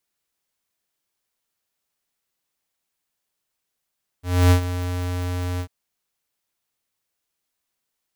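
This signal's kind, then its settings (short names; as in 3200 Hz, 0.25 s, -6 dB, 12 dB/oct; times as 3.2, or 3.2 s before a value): ADSR square 89.5 Hz, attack 0.279 s, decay 95 ms, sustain -13 dB, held 1.37 s, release 75 ms -12.5 dBFS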